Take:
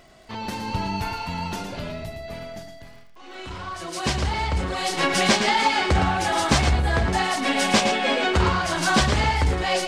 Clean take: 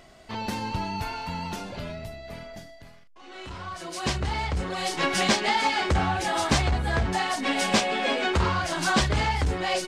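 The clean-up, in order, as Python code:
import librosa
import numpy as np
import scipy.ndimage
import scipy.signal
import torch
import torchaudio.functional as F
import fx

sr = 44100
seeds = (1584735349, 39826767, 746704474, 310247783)

y = fx.fix_declick_ar(x, sr, threshold=6.5)
y = fx.fix_echo_inverse(y, sr, delay_ms=113, level_db=-8.0)
y = fx.fix_level(y, sr, at_s=0.68, step_db=-3.0)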